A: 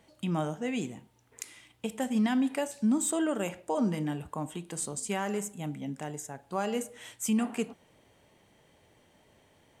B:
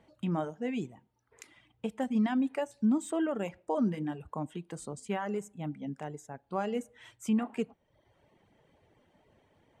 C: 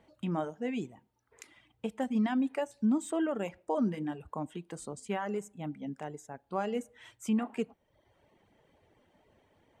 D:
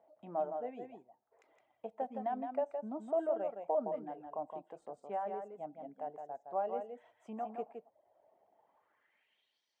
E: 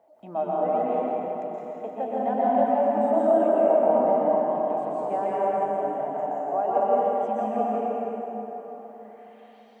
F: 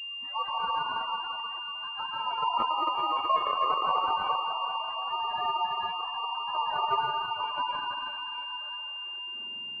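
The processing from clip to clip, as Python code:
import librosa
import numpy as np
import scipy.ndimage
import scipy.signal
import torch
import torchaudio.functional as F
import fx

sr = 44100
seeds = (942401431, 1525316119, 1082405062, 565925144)

y1 = fx.dereverb_blind(x, sr, rt60_s=0.8)
y1 = fx.lowpass(y1, sr, hz=1700.0, slope=6)
y2 = fx.peak_eq(y1, sr, hz=140.0, db=-3.5, octaves=0.86)
y3 = fx.filter_sweep_bandpass(y2, sr, from_hz=680.0, to_hz=5100.0, start_s=8.51, end_s=9.62, q=4.9)
y3 = y3 + 10.0 ** (-6.0 / 20.0) * np.pad(y3, (int(165 * sr / 1000.0), 0))[:len(y3)]
y3 = y3 * 10.0 ** (5.0 / 20.0)
y4 = fx.rev_plate(y3, sr, seeds[0], rt60_s=4.2, hf_ratio=0.6, predelay_ms=110, drr_db=-8.0)
y4 = y4 * 10.0 ** (7.0 / 20.0)
y5 = fx.octave_mirror(y4, sr, pivot_hz=840.0)
y5 = fx.spec_gate(y5, sr, threshold_db=-15, keep='strong')
y5 = fx.pwm(y5, sr, carrier_hz=2800.0)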